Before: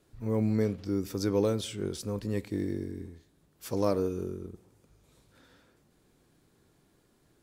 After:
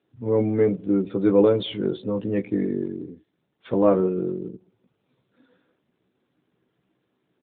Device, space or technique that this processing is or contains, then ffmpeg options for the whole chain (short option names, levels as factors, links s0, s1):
mobile call with aggressive noise cancelling: -filter_complex "[0:a]asplit=3[s0][s1][s2];[s0]afade=t=out:st=2.63:d=0.02[s3];[s1]adynamicequalizer=threshold=0.00158:dfrequency=180:dqfactor=7.7:tfrequency=180:tqfactor=7.7:attack=5:release=100:ratio=0.375:range=2.5:mode=cutabove:tftype=bell,afade=t=in:st=2.63:d=0.02,afade=t=out:st=3.08:d=0.02[s4];[s2]afade=t=in:st=3.08:d=0.02[s5];[s3][s4][s5]amix=inputs=3:normalize=0,highpass=140,asplit=2[s6][s7];[s7]adelay=16,volume=0.631[s8];[s6][s8]amix=inputs=2:normalize=0,afftdn=nr=13:nf=-48,volume=2.66" -ar 8000 -c:a libopencore_amrnb -b:a 12200